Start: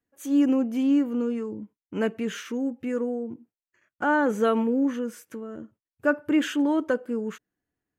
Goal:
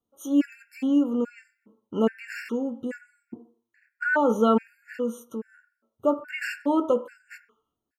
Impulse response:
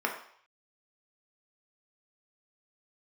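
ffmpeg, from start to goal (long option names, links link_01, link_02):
-filter_complex "[0:a]asplit=2[link_01][link_02];[link_02]adelay=18,volume=-13.5dB[link_03];[link_01][link_03]amix=inputs=2:normalize=0,asplit=2[link_04][link_05];[1:a]atrim=start_sample=2205[link_06];[link_05][link_06]afir=irnorm=-1:irlink=0,volume=-13dB[link_07];[link_04][link_07]amix=inputs=2:normalize=0,afftfilt=real='re*gt(sin(2*PI*1.2*pts/sr)*(1-2*mod(floor(b*sr/1024/1400),2)),0)':imag='im*gt(sin(2*PI*1.2*pts/sr)*(1-2*mod(floor(b*sr/1024/1400),2)),0)':win_size=1024:overlap=0.75"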